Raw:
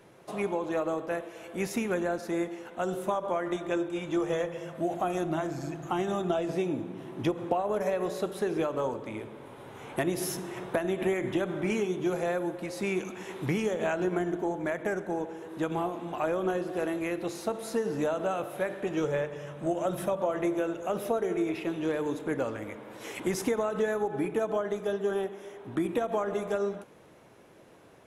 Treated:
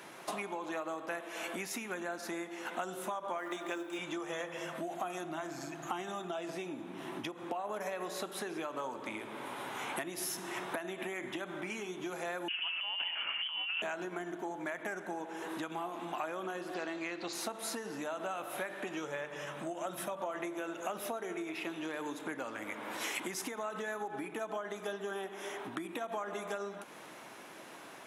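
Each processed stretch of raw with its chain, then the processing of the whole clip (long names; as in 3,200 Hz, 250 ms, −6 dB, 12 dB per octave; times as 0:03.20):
0:03.38–0:03.99: high-pass filter 190 Hz 24 dB per octave + log-companded quantiser 8 bits
0:12.48–0:13.82: compressor whose output falls as the input rises −36 dBFS + voice inversion scrambler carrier 3,200 Hz
0:16.74–0:17.33: low-pass filter 7,100 Hz 24 dB per octave + parametric band 4,500 Hz +13 dB 0.21 octaves
whole clip: parametric band 470 Hz −11 dB 0.95 octaves; downward compressor 10 to 1, threshold −45 dBFS; high-pass filter 330 Hz 12 dB per octave; level +11 dB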